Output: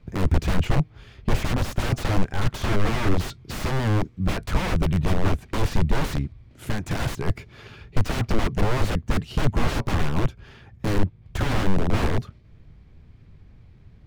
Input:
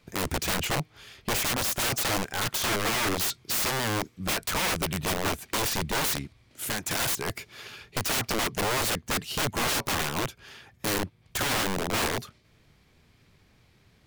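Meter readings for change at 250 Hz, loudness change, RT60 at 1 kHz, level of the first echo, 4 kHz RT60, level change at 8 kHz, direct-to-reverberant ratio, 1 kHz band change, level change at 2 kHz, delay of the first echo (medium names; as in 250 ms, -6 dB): +7.0 dB, +1.5 dB, no reverb, no echo, no reverb, -11.0 dB, no reverb, 0.0 dB, -2.5 dB, no echo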